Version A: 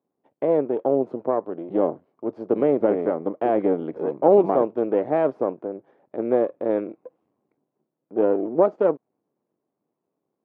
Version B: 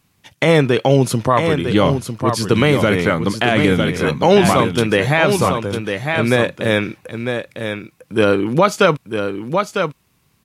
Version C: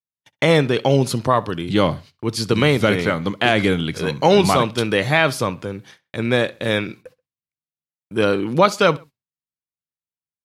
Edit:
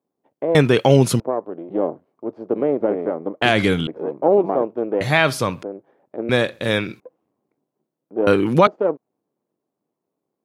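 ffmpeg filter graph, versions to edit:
-filter_complex "[1:a]asplit=2[s0][s1];[2:a]asplit=3[s2][s3][s4];[0:a]asplit=6[s5][s6][s7][s8][s9][s10];[s5]atrim=end=0.552[s11];[s0]atrim=start=0.548:end=1.202[s12];[s6]atrim=start=1.198:end=3.422[s13];[s2]atrim=start=3.418:end=3.872[s14];[s7]atrim=start=3.868:end=5.012[s15];[s3]atrim=start=5.008:end=5.632[s16];[s8]atrim=start=5.628:end=6.292[s17];[s4]atrim=start=6.288:end=7.002[s18];[s9]atrim=start=6.998:end=8.272[s19];[s1]atrim=start=8.268:end=8.672[s20];[s10]atrim=start=8.668[s21];[s11][s12]acrossfade=d=0.004:c1=hsin:c2=hsin[s22];[s22][s13]acrossfade=d=0.004:c1=hsin:c2=hsin[s23];[s23][s14]acrossfade=d=0.004:c1=hsin:c2=hsin[s24];[s24][s15]acrossfade=d=0.004:c1=hsin:c2=hsin[s25];[s25][s16]acrossfade=d=0.004:c1=hsin:c2=hsin[s26];[s26][s17]acrossfade=d=0.004:c1=hsin:c2=hsin[s27];[s27][s18]acrossfade=d=0.004:c1=hsin:c2=hsin[s28];[s28][s19]acrossfade=d=0.004:c1=hsin:c2=hsin[s29];[s29][s20]acrossfade=d=0.004:c1=hsin:c2=hsin[s30];[s30][s21]acrossfade=d=0.004:c1=hsin:c2=hsin"

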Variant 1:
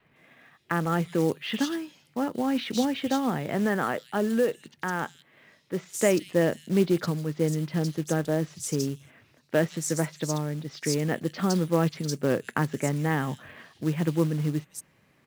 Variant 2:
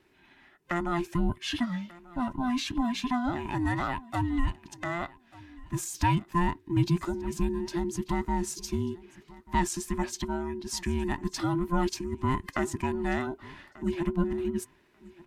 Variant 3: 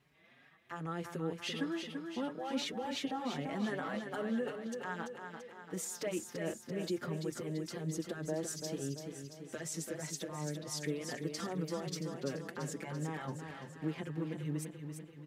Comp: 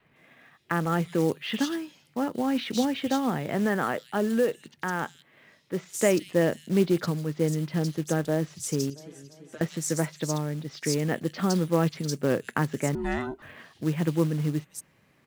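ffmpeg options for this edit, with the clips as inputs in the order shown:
-filter_complex "[0:a]asplit=3[s0][s1][s2];[s0]atrim=end=8.902[s3];[2:a]atrim=start=8.898:end=9.612[s4];[s1]atrim=start=9.608:end=12.952[s5];[1:a]atrim=start=12.948:end=13.422[s6];[s2]atrim=start=13.418[s7];[s3][s4]acrossfade=d=0.004:c1=hsin:c2=hsin[s8];[s8][s5]acrossfade=d=0.004:c1=hsin:c2=hsin[s9];[s9][s6]acrossfade=d=0.004:c1=hsin:c2=hsin[s10];[s10][s7]acrossfade=d=0.004:c1=hsin:c2=hsin"

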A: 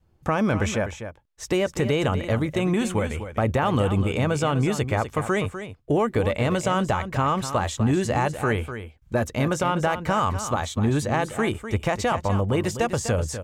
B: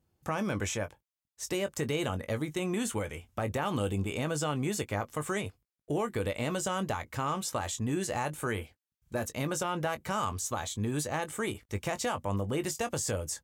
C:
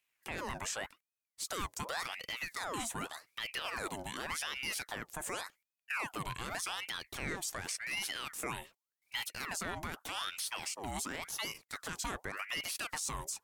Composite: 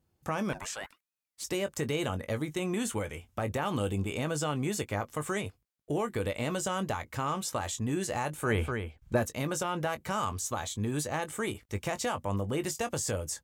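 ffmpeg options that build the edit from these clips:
-filter_complex "[1:a]asplit=3[s0][s1][s2];[s0]atrim=end=0.532[s3];[2:a]atrim=start=0.528:end=1.442[s4];[s1]atrim=start=1.438:end=8.66[s5];[0:a]atrim=start=8.42:end=9.29[s6];[s2]atrim=start=9.05[s7];[s3][s4]acrossfade=d=0.004:c1=hsin:c2=hsin[s8];[s8][s5]acrossfade=d=0.004:c1=hsin:c2=hsin[s9];[s9][s6]acrossfade=d=0.24:c1=tri:c2=tri[s10];[s10][s7]acrossfade=d=0.24:c1=tri:c2=tri"

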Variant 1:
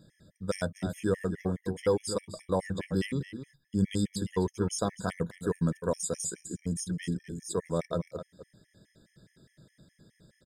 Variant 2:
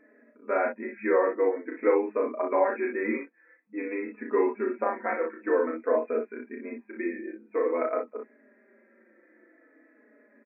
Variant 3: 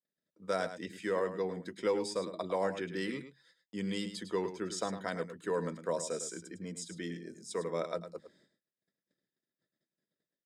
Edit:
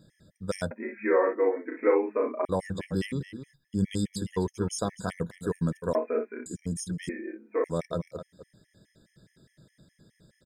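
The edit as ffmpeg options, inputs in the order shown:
-filter_complex "[1:a]asplit=3[s0][s1][s2];[0:a]asplit=4[s3][s4][s5][s6];[s3]atrim=end=0.712[s7];[s0]atrim=start=0.708:end=2.452[s8];[s4]atrim=start=2.448:end=5.952[s9];[s1]atrim=start=5.948:end=6.462[s10];[s5]atrim=start=6.458:end=7.092[s11];[s2]atrim=start=7.088:end=7.642[s12];[s6]atrim=start=7.638[s13];[s7][s8]acrossfade=d=0.004:c1=hsin:c2=hsin[s14];[s14][s9]acrossfade=d=0.004:c1=hsin:c2=hsin[s15];[s15][s10]acrossfade=d=0.004:c1=hsin:c2=hsin[s16];[s16][s11]acrossfade=d=0.004:c1=hsin:c2=hsin[s17];[s17][s12]acrossfade=d=0.004:c1=hsin:c2=hsin[s18];[s18][s13]acrossfade=d=0.004:c1=hsin:c2=hsin"

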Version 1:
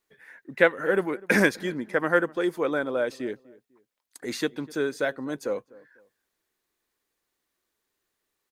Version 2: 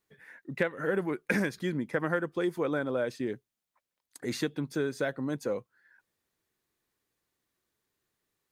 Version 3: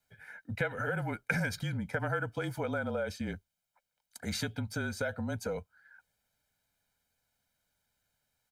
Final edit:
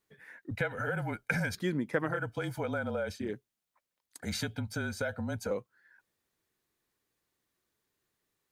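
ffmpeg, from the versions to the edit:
-filter_complex "[2:a]asplit=3[s0][s1][s2];[1:a]asplit=4[s3][s4][s5][s6];[s3]atrim=end=0.512[s7];[s0]atrim=start=0.508:end=1.552[s8];[s4]atrim=start=1.548:end=2.24[s9];[s1]atrim=start=2:end=3.35[s10];[s5]atrim=start=3.11:end=4.222[s11];[s2]atrim=start=4.218:end=5.512[s12];[s6]atrim=start=5.508[s13];[s7][s8]acrossfade=d=0.004:c1=hsin:c2=hsin[s14];[s14][s9]acrossfade=d=0.004:c1=hsin:c2=hsin[s15];[s15][s10]acrossfade=d=0.24:c1=tri:c2=tri[s16];[s16][s11]acrossfade=d=0.24:c1=tri:c2=tri[s17];[s17][s12]acrossfade=d=0.004:c1=hsin:c2=hsin[s18];[s18][s13]acrossfade=d=0.004:c1=hsin:c2=hsin"

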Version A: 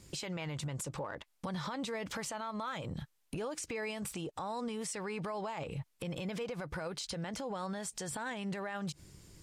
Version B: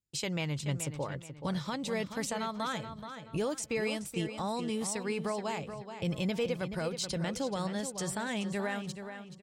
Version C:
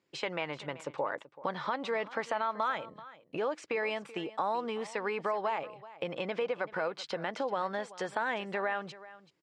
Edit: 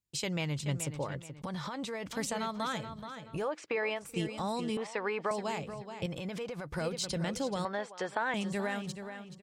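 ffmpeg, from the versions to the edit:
-filter_complex "[0:a]asplit=2[s0][s1];[2:a]asplit=3[s2][s3][s4];[1:a]asplit=6[s5][s6][s7][s8][s9][s10];[s5]atrim=end=1.422[s11];[s0]atrim=start=1.418:end=2.132[s12];[s6]atrim=start=2.128:end=3.54[s13];[s2]atrim=start=3.3:end=4.17[s14];[s7]atrim=start=3.93:end=4.772[s15];[s3]atrim=start=4.768:end=5.312[s16];[s8]atrim=start=5.308:end=6.062[s17];[s1]atrim=start=6.058:end=6.762[s18];[s9]atrim=start=6.758:end=7.652[s19];[s4]atrim=start=7.648:end=8.342[s20];[s10]atrim=start=8.338[s21];[s11][s12]acrossfade=d=0.004:c1=hsin:c2=hsin[s22];[s22][s13]acrossfade=d=0.004:c1=hsin:c2=hsin[s23];[s23][s14]acrossfade=d=0.24:c1=tri:c2=tri[s24];[s24][s15]acrossfade=d=0.24:c1=tri:c2=tri[s25];[s25][s16]acrossfade=d=0.004:c1=hsin:c2=hsin[s26];[s26][s17]acrossfade=d=0.004:c1=hsin:c2=hsin[s27];[s27][s18]acrossfade=d=0.004:c1=hsin:c2=hsin[s28];[s28][s19]acrossfade=d=0.004:c1=hsin:c2=hsin[s29];[s29][s20]acrossfade=d=0.004:c1=hsin:c2=hsin[s30];[s30][s21]acrossfade=d=0.004:c1=hsin:c2=hsin"

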